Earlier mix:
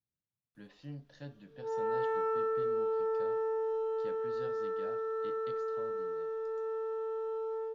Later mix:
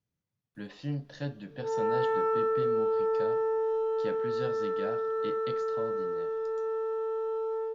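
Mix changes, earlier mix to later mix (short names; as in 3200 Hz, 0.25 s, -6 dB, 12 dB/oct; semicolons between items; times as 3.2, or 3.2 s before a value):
speech +11.0 dB; background +4.5 dB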